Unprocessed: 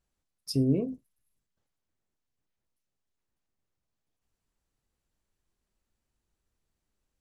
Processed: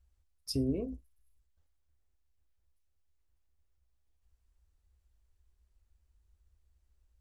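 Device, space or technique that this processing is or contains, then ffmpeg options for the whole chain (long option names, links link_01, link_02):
car stereo with a boomy subwoofer: -af "lowshelf=frequency=100:width_type=q:width=3:gain=13,alimiter=limit=-21.5dB:level=0:latency=1:release=209,volume=-2dB"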